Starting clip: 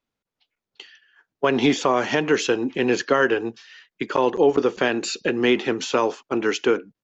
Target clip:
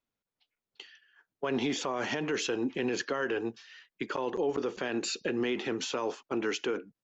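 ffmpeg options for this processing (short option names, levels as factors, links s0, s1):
-af "alimiter=limit=0.158:level=0:latency=1:release=43,volume=0.501"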